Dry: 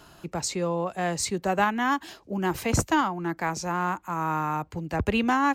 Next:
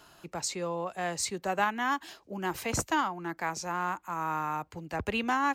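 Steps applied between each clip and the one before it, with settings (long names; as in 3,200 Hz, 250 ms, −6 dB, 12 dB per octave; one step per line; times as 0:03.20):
low-shelf EQ 370 Hz −8 dB
level −3 dB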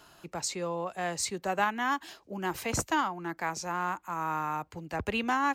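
no processing that can be heard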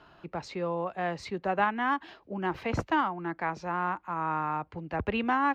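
high-frequency loss of the air 320 metres
level +3 dB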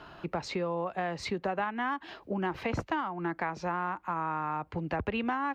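downward compressor 6 to 1, threshold −36 dBFS, peak gain reduction 14 dB
level +7 dB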